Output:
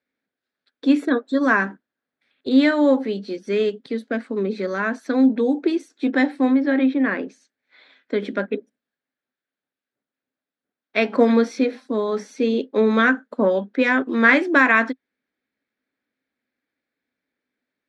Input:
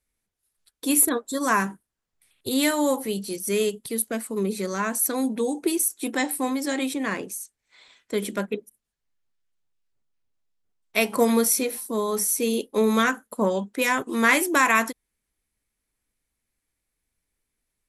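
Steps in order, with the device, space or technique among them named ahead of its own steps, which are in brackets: kitchen radio (speaker cabinet 230–3900 Hz, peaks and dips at 260 Hz +10 dB, 550 Hz +4 dB, 1000 Hz -5 dB, 1600 Hz +6 dB, 2900 Hz -6 dB); 6.49–8.2 treble ducked by the level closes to 2800 Hz, closed at -17.5 dBFS; gain +2.5 dB

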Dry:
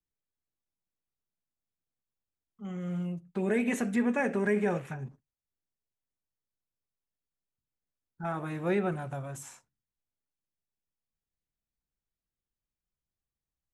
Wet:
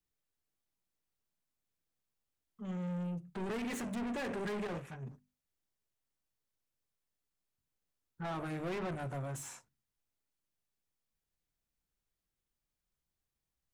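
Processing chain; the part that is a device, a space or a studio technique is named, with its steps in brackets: saturation between pre-emphasis and de-emphasis (high shelf 3500 Hz +7.5 dB; soft clip -38.5 dBFS, distortion -4 dB; high shelf 3500 Hz -7.5 dB); 4.67–5.07 gate -42 dBFS, range -7 dB; notches 50/100/150/200/250 Hz; gain +3 dB

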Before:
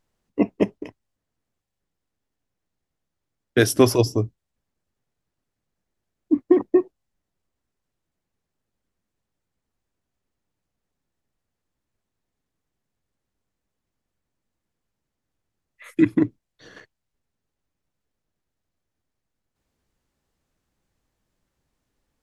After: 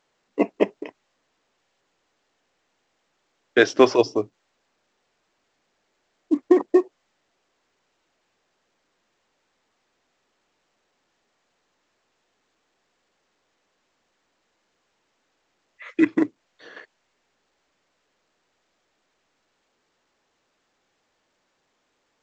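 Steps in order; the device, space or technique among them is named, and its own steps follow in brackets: telephone (BPF 400–3400 Hz; gain +4.5 dB; A-law 128 kbps 16000 Hz)

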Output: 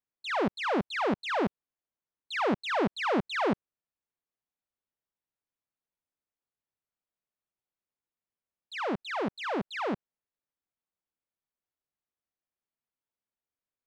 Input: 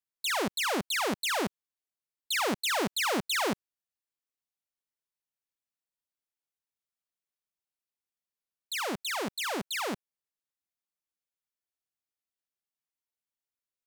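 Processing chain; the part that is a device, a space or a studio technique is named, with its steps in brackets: phone in a pocket (LPF 3700 Hz 12 dB/oct; high shelf 2000 Hz -12 dB); gain +4 dB

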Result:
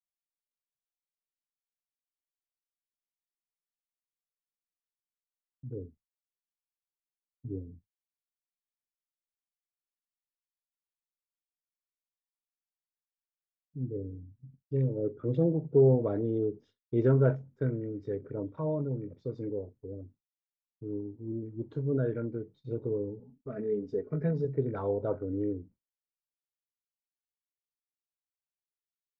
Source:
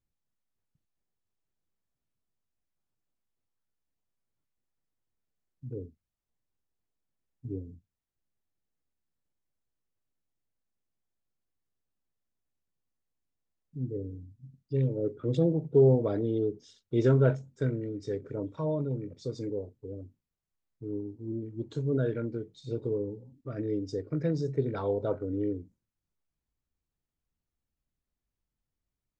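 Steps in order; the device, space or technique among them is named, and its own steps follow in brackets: hearing-loss simulation (LPF 1700 Hz 12 dB/oct; expander -50 dBFS); 23.19–24.45 comb 4.7 ms, depth 79%; gain -1 dB

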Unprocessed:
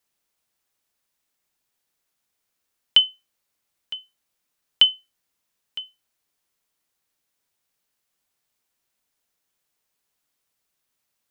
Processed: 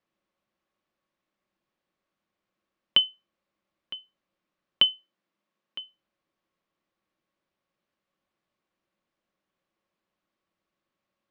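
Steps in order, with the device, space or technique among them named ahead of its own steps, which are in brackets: inside a cardboard box (LPF 3000 Hz 12 dB/oct; small resonant body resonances 200/330/550/1100 Hz, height 11 dB, ringing for 50 ms); 4.94–5.79 HPF 160 Hz; gain -2 dB

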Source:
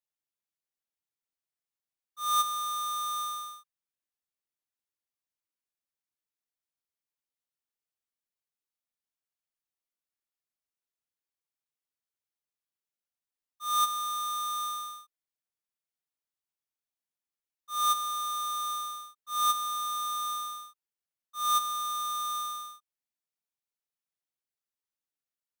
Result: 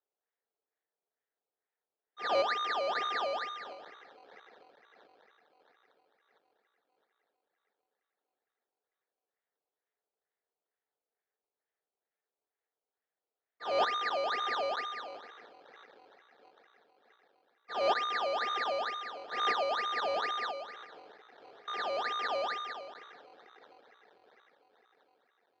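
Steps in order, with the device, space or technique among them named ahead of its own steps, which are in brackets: 20.51–21.68 steep low-pass 590 Hz 36 dB/oct; split-band echo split 2700 Hz, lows 0.119 s, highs 0.661 s, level -9 dB; circuit-bent sampling toy (decimation with a swept rate 17×, swing 100% 2.2 Hz; speaker cabinet 420–4100 Hz, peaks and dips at 440 Hz +10 dB, 740 Hz +4 dB, 1100 Hz -4 dB, 1800 Hz +7 dB, 2700 Hz -6 dB, 4000 Hz +6 dB); gain -3.5 dB

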